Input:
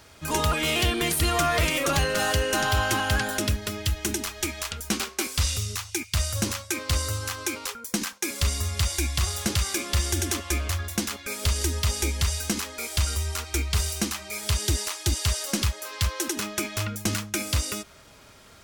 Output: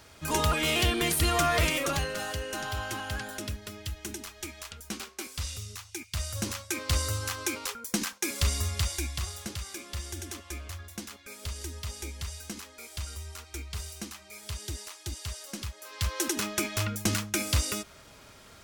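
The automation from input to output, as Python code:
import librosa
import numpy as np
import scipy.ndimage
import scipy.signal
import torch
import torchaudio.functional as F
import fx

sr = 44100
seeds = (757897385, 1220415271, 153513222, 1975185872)

y = fx.gain(x, sr, db=fx.line((1.67, -2.0), (2.27, -10.5), (5.84, -10.5), (6.95, -2.0), (8.64, -2.0), (9.56, -12.5), (15.71, -12.5), (16.21, -1.0)))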